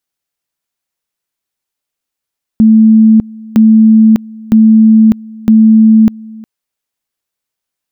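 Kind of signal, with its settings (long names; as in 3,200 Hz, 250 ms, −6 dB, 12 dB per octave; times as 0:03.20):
tone at two levels in turn 220 Hz −1.5 dBFS, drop 24 dB, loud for 0.60 s, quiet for 0.36 s, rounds 4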